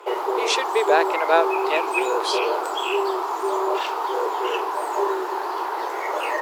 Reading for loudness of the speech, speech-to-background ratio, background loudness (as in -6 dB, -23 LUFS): -23.5 LUFS, 0.5 dB, -24.0 LUFS